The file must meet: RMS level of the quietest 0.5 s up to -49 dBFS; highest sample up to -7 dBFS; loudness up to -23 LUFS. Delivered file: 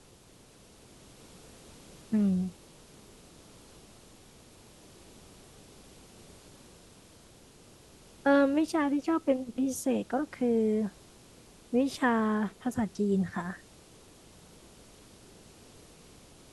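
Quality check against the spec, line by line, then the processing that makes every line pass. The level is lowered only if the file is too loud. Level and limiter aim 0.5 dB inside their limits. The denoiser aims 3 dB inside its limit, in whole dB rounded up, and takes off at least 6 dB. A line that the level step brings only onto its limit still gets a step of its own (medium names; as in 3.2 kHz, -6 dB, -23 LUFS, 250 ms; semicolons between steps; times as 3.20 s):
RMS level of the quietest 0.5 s -57 dBFS: pass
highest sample -12.0 dBFS: pass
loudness -29.5 LUFS: pass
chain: none needed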